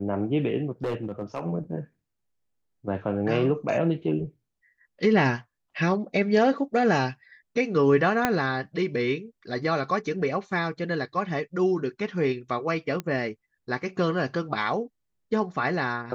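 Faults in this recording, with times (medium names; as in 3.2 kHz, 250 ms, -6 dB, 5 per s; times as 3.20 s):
0.84–1.45 s: clipped -24.5 dBFS
8.25 s: pop -7 dBFS
13.00 s: pop -17 dBFS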